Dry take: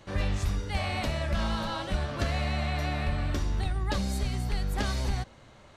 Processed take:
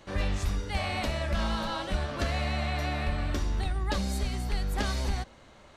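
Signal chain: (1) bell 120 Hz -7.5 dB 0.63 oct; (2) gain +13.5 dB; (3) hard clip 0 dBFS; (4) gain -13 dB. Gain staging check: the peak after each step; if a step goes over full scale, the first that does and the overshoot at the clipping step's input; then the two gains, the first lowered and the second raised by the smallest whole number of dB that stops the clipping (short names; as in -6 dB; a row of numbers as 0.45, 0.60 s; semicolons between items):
-17.5, -4.0, -4.0, -17.0 dBFS; no overload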